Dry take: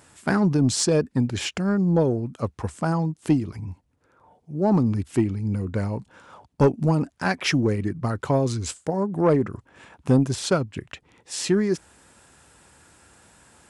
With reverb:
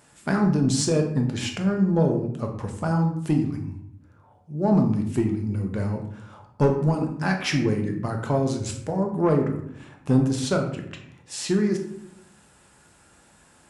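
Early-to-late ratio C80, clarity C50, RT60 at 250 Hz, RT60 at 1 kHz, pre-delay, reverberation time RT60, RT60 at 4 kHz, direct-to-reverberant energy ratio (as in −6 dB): 10.5 dB, 7.5 dB, 1.1 s, 0.65 s, 4 ms, 0.75 s, 0.45 s, 2.5 dB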